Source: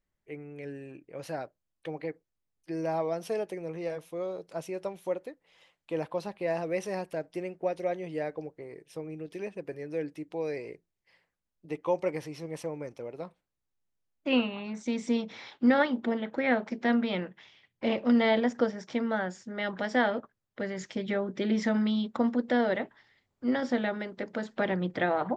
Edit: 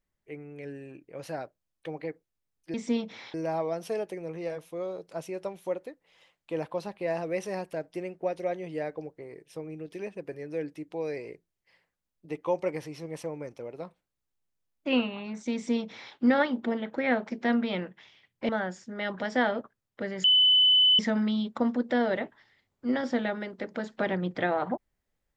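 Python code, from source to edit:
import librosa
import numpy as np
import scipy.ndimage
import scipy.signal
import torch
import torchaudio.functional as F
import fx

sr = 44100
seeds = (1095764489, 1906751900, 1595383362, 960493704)

y = fx.edit(x, sr, fx.duplicate(start_s=14.94, length_s=0.6, to_s=2.74),
    fx.cut(start_s=17.89, length_s=1.19),
    fx.bleep(start_s=20.83, length_s=0.75, hz=3010.0, db=-17.0), tone=tone)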